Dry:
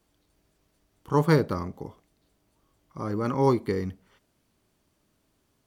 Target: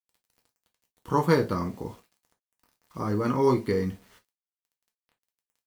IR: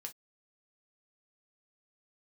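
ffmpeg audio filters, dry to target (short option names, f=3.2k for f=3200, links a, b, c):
-filter_complex "[0:a]asplit=2[a][b];[b]acompressor=threshold=-29dB:ratio=6,volume=0dB[c];[a][c]amix=inputs=2:normalize=0,acrusher=bits=8:mix=0:aa=0.000001[d];[1:a]atrim=start_sample=2205[e];[d][e]afir=irnorm=-1:irlink=0,volume=2dB"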